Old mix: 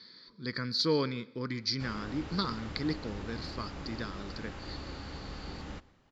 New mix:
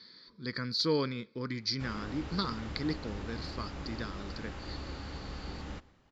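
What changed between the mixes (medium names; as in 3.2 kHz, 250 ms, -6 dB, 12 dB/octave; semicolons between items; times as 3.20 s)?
speech: send off; master: add peaking EQ 63 Hz +7.5 dB 0.22 oct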